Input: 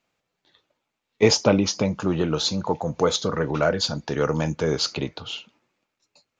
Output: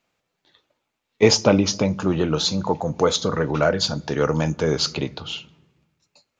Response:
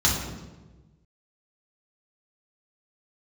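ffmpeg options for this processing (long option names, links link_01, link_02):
-filter_complex "[0:a]asplit=2[link_01][link_02];[1:a]atrim=start_sample=2205,adelay=11[link_03];[link_02][link_03]afir=irnorm=-1:irlink=0,volume=-37dB[link_04];[link_01][link_04]amix=inputs=2:normalize=0,volume=2dB"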